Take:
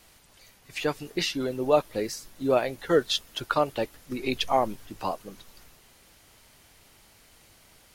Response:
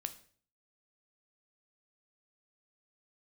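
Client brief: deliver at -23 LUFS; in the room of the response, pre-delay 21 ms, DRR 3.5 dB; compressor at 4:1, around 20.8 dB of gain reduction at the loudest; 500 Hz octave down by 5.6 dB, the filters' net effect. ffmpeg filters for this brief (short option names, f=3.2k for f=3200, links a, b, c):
-filter_complex "[0:a]equalizer=f=500:t=o:g=-7,acompressor=threshold=-46dB:ratio=4,asplit=2[a][b];[1:a]atrim=start_sample=2205,adelay=21[c];[b][c]afir=irnorm=-1:irlink=0,volume=-2dB[d];[a][d]amix=inputs=2:normalize=0,volume=24dB"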